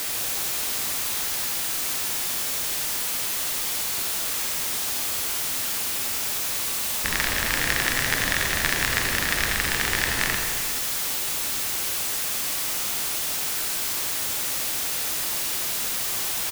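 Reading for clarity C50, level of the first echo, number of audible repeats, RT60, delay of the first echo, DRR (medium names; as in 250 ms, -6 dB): 3.0 dB, -8.5 dB, 1, 1.8 s, 87 ms, 2.0 dB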